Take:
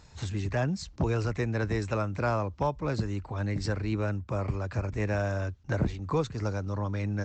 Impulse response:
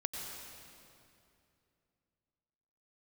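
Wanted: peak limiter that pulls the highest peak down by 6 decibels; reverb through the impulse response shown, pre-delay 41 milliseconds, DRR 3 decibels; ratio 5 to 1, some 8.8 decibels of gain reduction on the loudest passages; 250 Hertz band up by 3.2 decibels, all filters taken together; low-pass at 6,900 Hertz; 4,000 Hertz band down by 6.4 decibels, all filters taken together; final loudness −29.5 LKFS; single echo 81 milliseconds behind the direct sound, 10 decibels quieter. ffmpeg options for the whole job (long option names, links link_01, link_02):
-filter_complex "[0:a]lowpass=6900,equalizer=frequency=250:width_type=o:gain=4.5,equalizer=frequency=4000:width_type=o:gain=-7.5,acompressor=threshold=-30dB:ratio=5,alimiter=level_in=3dB:limit=-24dB:level=0:latency=1,volume=-3dB,aecho=1:1:81:0.316,asplit=2[link_01][link_02];[1:a]atrim=start_sample=2205,adelay=41[link_03];[link_02][link_03]afir=irnorm=-1:irlink=0,volume=-4.5dB[link_04];[link_01][link_04]amix=inputs=2:normalize=0,volume=4.5dB"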